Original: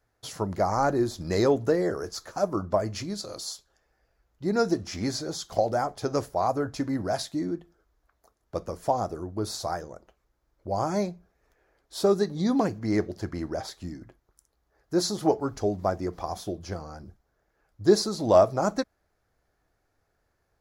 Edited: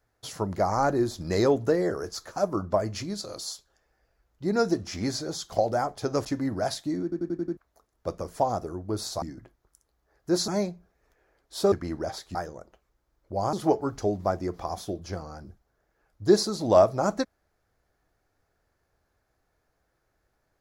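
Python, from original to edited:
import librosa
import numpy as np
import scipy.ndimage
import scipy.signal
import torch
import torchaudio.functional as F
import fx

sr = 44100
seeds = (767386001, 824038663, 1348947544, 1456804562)

y = fx.edit(x, sr, fx.cut(start_s=6.25, length_s=0.48),
    fx.stutter_over(start_s=7.51, slice_s=0.09, count=6),
    fx.swap(start_s=9.7, length_s=1.18, other_s=13.86, other_length_s=1.26),
    fx.cut(start_s=12.12, length_s=1.11), tone=tone)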